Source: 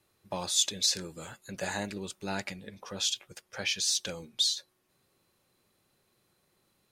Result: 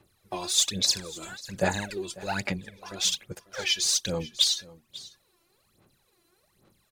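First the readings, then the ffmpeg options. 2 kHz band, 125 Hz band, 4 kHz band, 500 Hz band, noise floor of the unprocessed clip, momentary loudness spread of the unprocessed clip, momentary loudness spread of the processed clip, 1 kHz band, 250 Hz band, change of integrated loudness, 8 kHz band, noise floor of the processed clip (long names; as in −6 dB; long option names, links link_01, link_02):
+4.5 dB, +7.0 dB, +4.0 dB, +6.0 dB, −73 dBFS, 17 LU, 17 LU, +5.0 dB, +5.0 dB, +3.5 dB, +3.5 dB, −69 dBFS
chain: -filter_complex "[0:a]aphaser=in_gain=1:out_gain=1:delay=3:decay=0.78:speed=1.2:type=sinusoidal,asplit=2[link_01][link_02];[link_02]aecho=0:1:545:0.106[link_03];[link_01][link_03]amix=inputs=2:normalize=0"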